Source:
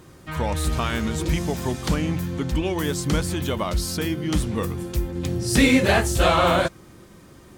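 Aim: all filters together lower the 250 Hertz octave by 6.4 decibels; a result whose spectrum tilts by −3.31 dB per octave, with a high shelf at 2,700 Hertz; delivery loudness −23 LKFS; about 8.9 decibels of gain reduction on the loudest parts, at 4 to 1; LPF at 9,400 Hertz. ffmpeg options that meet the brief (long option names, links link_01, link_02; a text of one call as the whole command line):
ffmpeg -i in.wav -af "lowpass=9400,equalizer=frequency=250:width_type=o:gain=-9,highshelf=frequency=2700:gain=8.5,acompressor=threshold=-24dB:ratio=4,volume=4.5dB" out.wav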